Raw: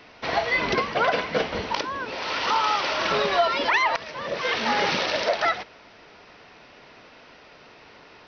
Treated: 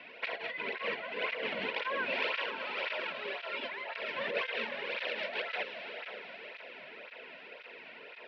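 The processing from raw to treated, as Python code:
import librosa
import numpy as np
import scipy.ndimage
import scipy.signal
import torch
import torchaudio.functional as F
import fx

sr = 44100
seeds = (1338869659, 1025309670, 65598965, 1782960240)

y = fx.notch(x, sr, hz=1200.0, q=11.0)
y = fx.over_compress(y, sr, threshold_db=-31.0, ratio=-1.0)
y = fx.cabinet(y, sr, low_hz=300.0, low_slope=12, high_hz=3300.0, hz=(310.0, 500.0, 800.0, 1200.0, 2500.0), db=(-9, 3, -9, -7, 5))
y = fx.echo_diffused(y, sr, ms=516, feedback_pct=46, wet_db=-7)
y = fx.flanger_cancel(y, sr, hz=1.9, depth_ms=2.5)
y = y * librosa.db_to_amplitude(-2.5)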